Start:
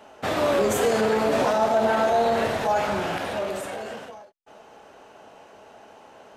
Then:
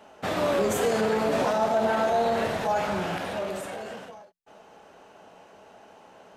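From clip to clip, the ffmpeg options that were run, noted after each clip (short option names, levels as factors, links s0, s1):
-af "equalizer=f=180:w=7.8:g=8.5,volume=0.708"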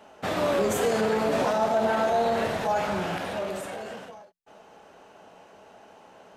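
-af anull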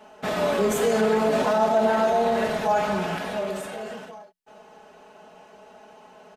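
-af "aecho=1:1:4.7:0.65"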